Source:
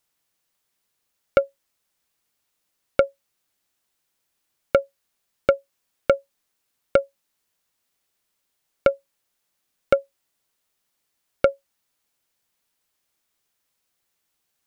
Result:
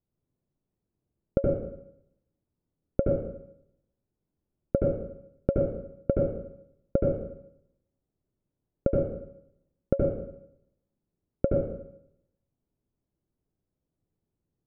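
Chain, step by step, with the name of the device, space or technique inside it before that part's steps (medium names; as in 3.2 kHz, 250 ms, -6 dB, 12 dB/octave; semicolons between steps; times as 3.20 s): television next door (compression 3:1, threshold -16 dBFS, peak gain reduction 4 dB; low-pass 260 Hz 12 dB/octave; reverberation RT60 0.75 s, pre-delay 68 ms, DRR -3 dB); trim +6.5 dB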